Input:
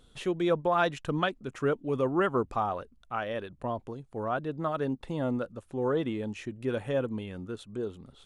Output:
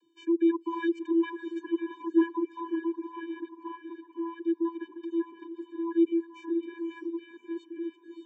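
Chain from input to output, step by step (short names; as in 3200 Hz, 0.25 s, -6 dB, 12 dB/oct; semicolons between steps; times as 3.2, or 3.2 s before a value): vocoder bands 32, square 334 Hz; diffused feedback echo 0.585 s, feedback 46%, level -5.5 dB; reverb removal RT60 0.62 s; gain +1.5 dB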